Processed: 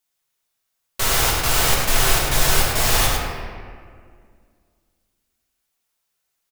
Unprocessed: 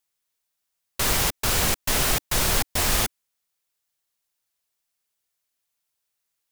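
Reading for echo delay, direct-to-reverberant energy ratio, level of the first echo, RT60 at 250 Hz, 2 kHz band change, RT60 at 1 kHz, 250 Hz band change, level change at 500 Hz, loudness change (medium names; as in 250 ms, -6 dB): 104 ms, -4.5 dB, -5.0 dB, 2.7 s, +5.5 dB, 1.9 s, +2.0 dB, +5.5 dB, +4.0 dB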